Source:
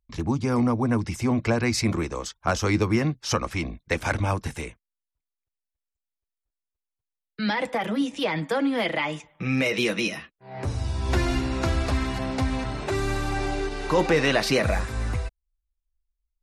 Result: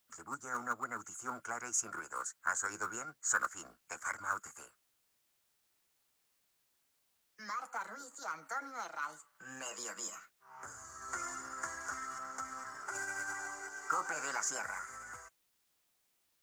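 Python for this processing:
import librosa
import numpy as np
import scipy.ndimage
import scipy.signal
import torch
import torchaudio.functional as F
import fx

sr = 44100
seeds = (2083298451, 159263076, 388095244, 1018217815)

p1 = fx.double_bandpass(x, sr, hz=2500.0, octaves=2.3)
p2 = fx.dmg_noise_colour(p1, sr, seeds[0], colour='white', level_db=-78.0)
p3 = fx.quant_float(p2, sr, bits=2)
p4 = p2 + F.gain(torch.from_numpy(p3), -8.0).numpy()
p5 = fx.formant_shift(p4, sr, semitones=4)
y = F.gain(torch.from_numpy(p5), -2.5).numpy()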